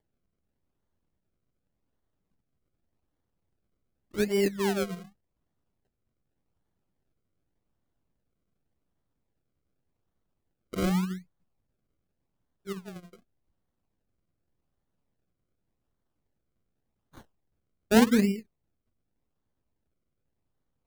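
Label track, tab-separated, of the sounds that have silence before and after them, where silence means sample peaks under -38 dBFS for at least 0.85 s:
4.140000	5.020000	sound
10.730000	11.180000	sound
12.670000	12.980000	sound
17.180000	18.400000	sound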